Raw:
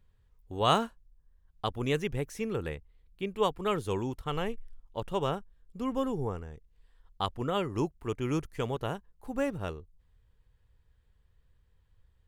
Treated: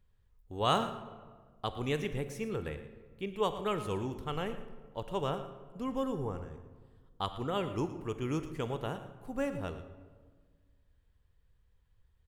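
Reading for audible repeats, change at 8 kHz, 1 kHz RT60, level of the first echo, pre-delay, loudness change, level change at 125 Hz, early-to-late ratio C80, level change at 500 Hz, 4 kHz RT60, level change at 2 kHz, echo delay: 1, −3.0 dB, 1.4 s, −15.0 dB, 25 ms, −3.0 dB, −3.0 dB, 11.0 dB, −3.0 dB, 0.90 s, −3.0 dB, 114 ms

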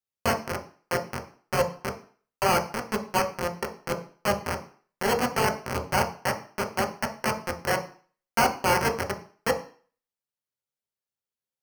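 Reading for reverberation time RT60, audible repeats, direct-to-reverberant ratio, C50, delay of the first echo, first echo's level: 0.45 s, no echo audible, 1.5 dB, 11.0 dB, no echo audible, no echo audible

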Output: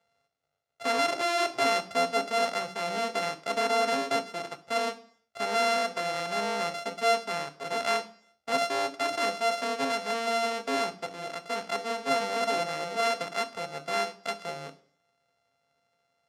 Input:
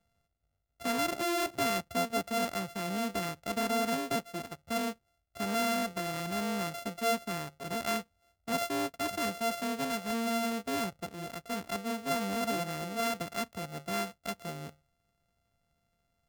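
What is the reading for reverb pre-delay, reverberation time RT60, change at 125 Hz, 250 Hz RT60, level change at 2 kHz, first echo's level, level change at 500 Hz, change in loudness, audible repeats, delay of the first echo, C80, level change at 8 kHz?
3 ms, 0.55 s, −6.5 dB, 0.55 s, +6.0 dB, no echo audible, +5.5 dB, +4.5 dB, no echo audible, no echo audible, 20.0 dB, +0.5 dB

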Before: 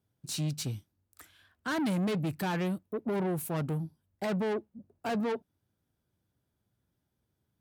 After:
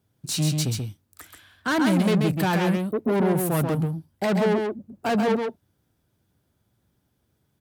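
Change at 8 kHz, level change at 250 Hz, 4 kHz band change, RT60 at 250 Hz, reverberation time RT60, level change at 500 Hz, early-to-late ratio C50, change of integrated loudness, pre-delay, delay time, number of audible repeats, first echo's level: +10.0 dB, +9.5 dB, +10.0 dB, no reverb audible, no reverb audible, +10.0 dB, no reverb audible, +9.5 dB, no reverb audible, 134 ms, 1, −4.5 dB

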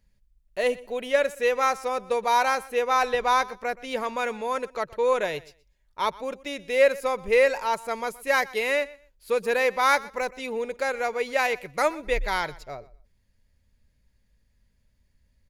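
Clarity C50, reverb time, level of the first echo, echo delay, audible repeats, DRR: no reverb audible, no reverb audible, −20.5 dB, 123 ms, 2, no reverb audible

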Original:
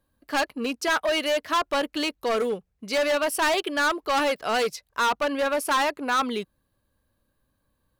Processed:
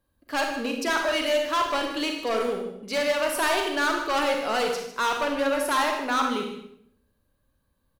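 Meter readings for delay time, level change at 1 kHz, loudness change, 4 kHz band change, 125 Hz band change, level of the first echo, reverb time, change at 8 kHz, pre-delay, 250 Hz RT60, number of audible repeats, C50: 153 ms, −0.5 dB, −0.5 dB, −0.5 dB, can't be measured, −12.0 dB, 0.70 s, −0.5 dB, 34 ms, 0.85 s, 1, 4.0 dB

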